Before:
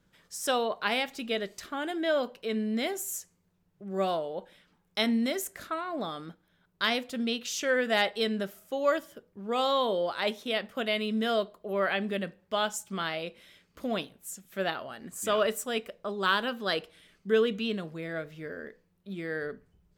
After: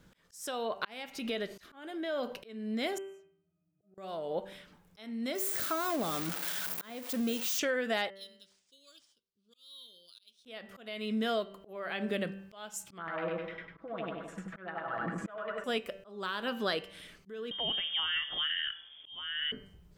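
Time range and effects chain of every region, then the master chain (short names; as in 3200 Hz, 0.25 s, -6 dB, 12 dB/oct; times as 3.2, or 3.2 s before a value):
1.08–2.42 notch 7600 Hz, Q 9.5 + compressor 3:1, threshold -40 dBFS
2.98–3.98 HPF 150 Hz + octave resonator D#, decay 0.27 s
5.35–7.59 switching spikes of -19.5 dBFS + de-esser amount 90% + HPF 65 Hz
8.1–10.45 inverse Chebyshev high-pass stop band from 2100 Hz + tape spacing loss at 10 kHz 23 dB + decimation joined by straight lines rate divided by 3×
12.98–15.64 comb 6.1 ms, depth 75% + feedback echo 84 ms, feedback 35%, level -3.5 dB + LFO low-pass saw down 10 Hz 980–2000 Hz
17.51–19.52 inverted band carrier 3400 Hz + three-band squash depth 70%
whole clip: de-hum 194.7 Hz, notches 16; compressor 5:1, threshold -38 dBFS; auto swell 0.431 s; gain +8 dB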